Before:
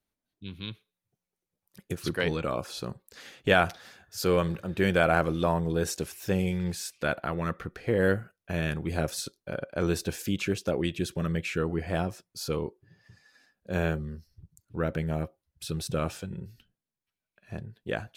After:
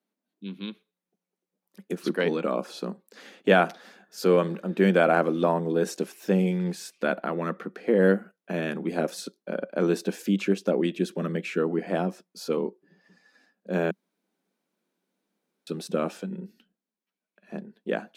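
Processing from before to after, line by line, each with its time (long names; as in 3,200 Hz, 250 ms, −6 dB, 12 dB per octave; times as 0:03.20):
0:13.91–0:15.67: fill with room tone
whole clip: elliptic high-pass filter 190 Hz, stop band 40 dB; spectral tilt −2 dB per octave; level +2.5 dB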